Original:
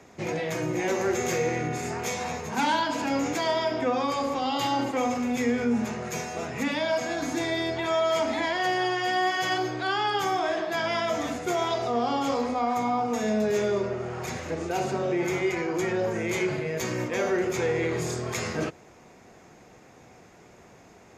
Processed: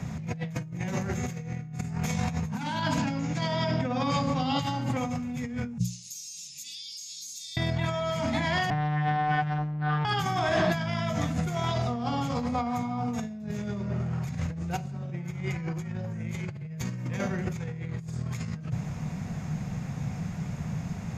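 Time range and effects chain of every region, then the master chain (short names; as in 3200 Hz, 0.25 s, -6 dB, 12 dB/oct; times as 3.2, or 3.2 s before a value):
2.98–4.62 Chebyshev band-pass 120–5900 Hz + notch 1200 Hz, Q 23
5.78–7.57 inverse Chebyshev high-pass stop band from 1700 Hz, stop band 50 dB + compressor, threshold -45 dBFS
8.7–10.05 LPF 1500 Hz + robotiser 150 Hz + Doppler distortion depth 0.97 ms
whole clip: resonant low shelf 240 Hz +13.5 dB, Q 3; notches 60/120/180 Hz; negative-ratio compressor -31 dBFS, ratio -1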